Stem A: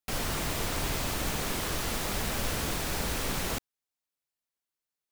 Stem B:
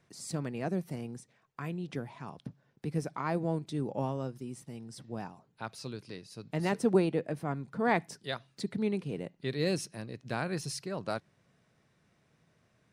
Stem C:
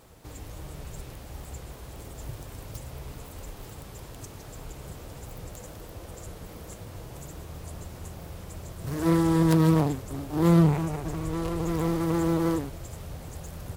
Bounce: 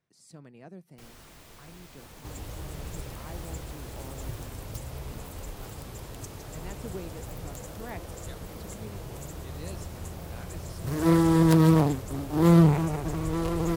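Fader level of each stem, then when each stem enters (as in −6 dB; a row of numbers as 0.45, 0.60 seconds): −19.5, −13.5, +1.5 decibels; 0.90, 0.00, 2.00 seconds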